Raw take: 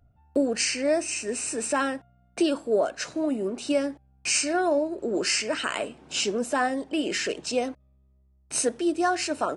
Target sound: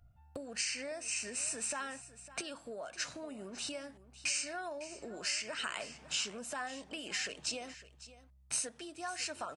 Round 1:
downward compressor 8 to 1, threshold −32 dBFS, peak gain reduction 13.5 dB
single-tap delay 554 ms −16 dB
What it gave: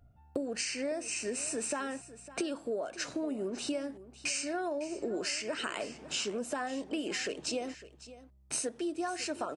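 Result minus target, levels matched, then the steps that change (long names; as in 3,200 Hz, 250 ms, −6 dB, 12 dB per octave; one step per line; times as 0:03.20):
250 Hz band +9.0 dB
add after downward compressor: parametric band 350 Hz −14 dB 1.6 octaves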